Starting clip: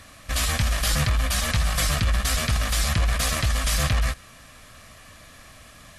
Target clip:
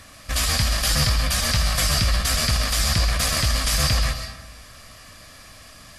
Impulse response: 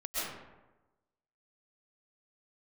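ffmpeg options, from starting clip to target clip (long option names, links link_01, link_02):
-filter_complex "[0:a]asplit=2[link_01][link_02];[link_02]equalizer=frequency=4800:width=4.1:gain=14.5[link_03];[1:a]atrim=start_sample=2205,highshelf=frequency=3600:gain=9.5[link_04];[link_03][link_04]afir=irnorm=-1:irlink=0,volume=-14dB[link_05];[link_01][link_05]amix=inputs=2:normalize=0"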